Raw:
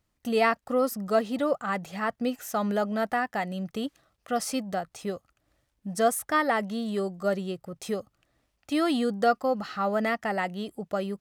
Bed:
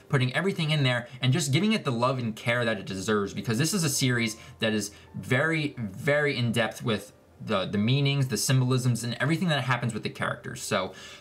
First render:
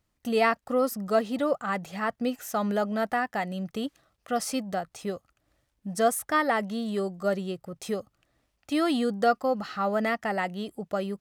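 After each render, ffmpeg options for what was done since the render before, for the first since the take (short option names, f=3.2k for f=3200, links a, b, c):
-af anull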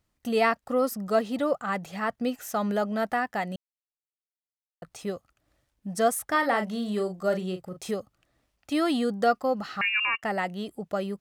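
-filter_complex "[0:a]asettb=1/sr,asplit=3[a][b][c];[a]atrim=end=6.254[d];[b]atrim=start=6.25:end=7.91,asetpts=PTS-STARTPTS,afade=t=in:d=0.004:c=qsin,afade=t=out:st=1.656:d=0.004:c=qsin,asplit=2[e][f];[f]adelay=38,volume=-8dB[g];[e][g]amix=inputs=2:normalize=0,atrim=end_sample=73206[h];[c]atrim=start=7.906[i];[d][h]acrossfade=d=0.004:c1=hsin:c2=qsin[j];[j][i]acrossfade=d=0.004:c1=qsin:c2=hsin,asettb=1/sr,asplit=3[k][l][m];[k]atrim=end=9.814[n];[l]atrim=start=9.81:end=10.23,asetpts=PTS-STARTPTS,afade=t=in:d=0.004:c=qsin,afade=t=out:st=0.416:d=0.004:c=qsin,lowpass=f=2.6k:t=q:w=0.5098,lowpass=f=2.6k:t=q:w=0.6013,lowpass=f=2.6k:t=q:w=0.9,lowpass=f=2.6k:t=q:w=2.563,afreqshift=-3000[o];[m]atrim=start=10.226[p];[n][o]acrossfade=d=0.004:c1=hsin:c2=qsin[q];[q][p]acrossfade=d=0.004:c1=qsin:c2=hsin,asplit=3[r][s][t];[r]atrim=end=3.56,asetpts=PTS-STARTPTS,afade=t=out:st=3.556:d=0.004:c=hsin[u];[s]atrim=start=3.56:end=4.82,asetpts=PTS-STARTPTS,volume=0[v];[t]atrim=start=4.82,asetpts=PTS-STARTPTS,afade=t=in:d=0.004:c=hsin[w];[u][v][w]concat=n=3:v=0:a=1"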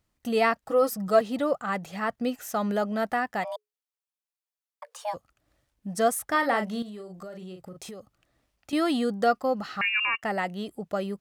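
-filter_complex "[0:a]asettb=1/sr,asplit=3[a][b][c];[a]atrim=end=0.654[d];[b]atrim=start=0.65:end=1.21,asetpts=PTS-STARTPTS,afade=t=in:d=0.004:c=qsin,afade=t=out:st=0.556:d=0.004:c=qsin,aecho=1:1:6.2:0.72,atrim=end_sample=24696[e];[c]atrim=start=1.206[f];[d][e]acrossfade=d=0.004:c1=hsin:c2=qsin[g];[g][f]acrossfade=d=0.004:c1=qsin:c2=hsin,asplit=3[h][i][j];[h]afade=t=out:st=3.43:d=0.02[k];[i]afreqshift=420,afade=t=in:st=3.43:d=0.02,afade=t=out:st=5.13:d=0.02[l];[j]afade=t=in:st=5.13:d=0.02[m];[k][l][m]amix=inputs=3:normalize=0,asettb=1/sr,asplit=3[n][o][p];[n]atrim=end=6.824[q];[o]atrim=start=6.82:end=8.73,asetpts=PTS-STARTPTS,afade=t=in:d=0.004:c=qsin,afade=t=out:st=1.906:d=0.004:c=qsin,acompressor=threshold=-37dB:ratio=10:attack=3.2:release=140:knee=1:detection=peak[r];[p]atrim=start=8.726[s];[q][r]acrossfade=d=0.004:c1=hsin:c2=qsin[t];[t][s]acrossfade=d=0.004:c1=qsin:c2=hsin"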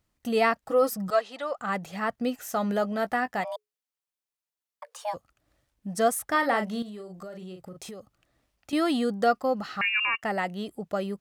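-filter_complex "[0:a]asettb=1/sr,asplit=3[a][b][c];[a]atrim=end=1.104[d];[b]atrim=start=1.1:end=1.58,asetpts=PTS-STARTPTS,afade=t=in:d=0.004:c=qsin,afade=t=out:st=0.476:d=0.004:c=qsin,highpass=730,lowpass=6.9k[e];[c]atrim=start=1.576[f];[d][e]acrossfade=d=0.004:c1=hsin:c2=qsin[g];[g][f]acrossfade=d=0.004:c1=qsin:c2=hsin,asettb=1/sr,asplit=3[h][i][j];[h]atrim=end=2.504[k];[i]atrim=start=2.5:end=3.41,asetpts=PTS-STARTPTS,afade=t=in:d=0.004:c=qsin,afade=t=out:st=0.906:d=0.004:c=qsin,asplit=2[l][m];[m]adelay=16,volume=-12dB[n];[l][n]amix=inputs=2:normalize=0,atrim=end_sample=40131[o];[j]atrim=start=3.406[p];[k][o]acrossfade=d=0.004:c1=hsin:c2=qsin[q];[q][p]acrossfade=d=0.004:c1=qsin:c2=hsin"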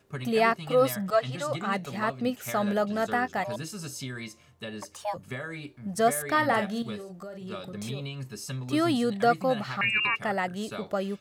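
-filter_complex "[1:a]volume=-12dB[a];[0:a][a]amix=inputs=2:normalize=0"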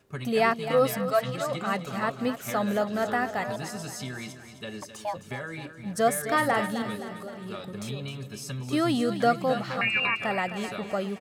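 -af "aecho=1:1:261|522|783|1044|1305|1566:0.282|0.147|0.0762|0.0396|0.0206|0.0107"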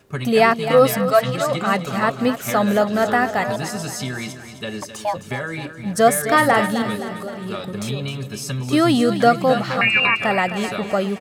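-af "volume=9dB,alimiter=limit=-3dB:level=0:latency=1"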